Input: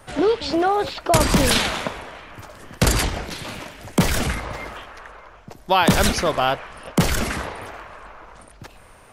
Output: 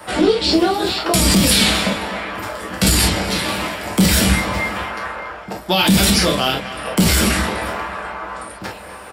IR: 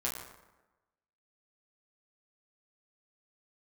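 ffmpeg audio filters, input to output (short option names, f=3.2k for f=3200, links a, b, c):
-filter_complex "[0:a]highpass=f=220:p=1,bandreject=f=6.3k:w=6.8[a];[1:a]atrim=start_sample=2205,atrim=end_sample=3528[b];[a][b]afir=irnorm=-1:irlink=0,acrossover=split=300|2700[c][d][e];[d]acompressor=threshold=-33dB:ratio=5[f];[c][f][e]amix=inputs=3:normalize=0,alimiter=limit=-15dB:level=0:latency=1:release=34,asplit=2[g][h];[h]adelay=249,lowpass=f=4k:p=1,volume=-14dB,asplit=2[i][j];[j]adelay=249,lowpass=f=4k:p=1,volume=0.43,asplit=2[k][l];[l]adelay=249,lowpass=f=4k:p=1,volume=0.43,asplit=2[m][n];[n]adelay=249,lowpass=f=4k:p=1,volume=0.43[o];[g][i][k][m][o]amix=inputs=5:normalize=0,asplit=2[p][q];[q]aeval=exprs='clip(val(0),-1,0.0794)':c=same,volume=-5dB[r];[p][r]amix=inputs=2:normalize=0,volume=7dB"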